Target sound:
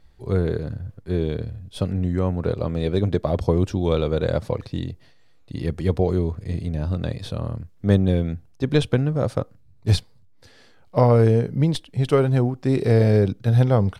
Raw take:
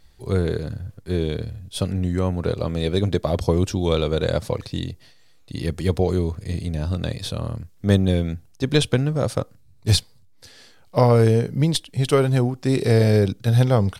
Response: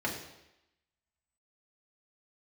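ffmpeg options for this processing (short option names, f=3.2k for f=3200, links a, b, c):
-af "highshelf=f=3.2k:g=-12"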